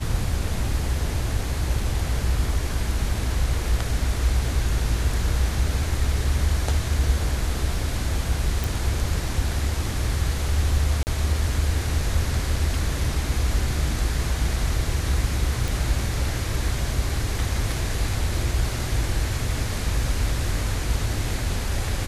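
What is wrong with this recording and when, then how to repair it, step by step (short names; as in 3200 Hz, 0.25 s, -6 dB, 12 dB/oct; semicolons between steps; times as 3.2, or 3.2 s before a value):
8.64 pop
11.03–11.07 gap 39 ms
15.68 pop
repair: de-click; interpolate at 11.03, 39 ms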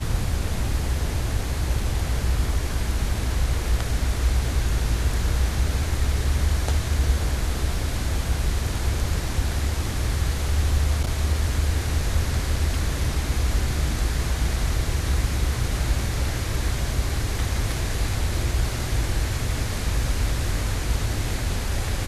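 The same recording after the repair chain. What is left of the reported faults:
8.64 pop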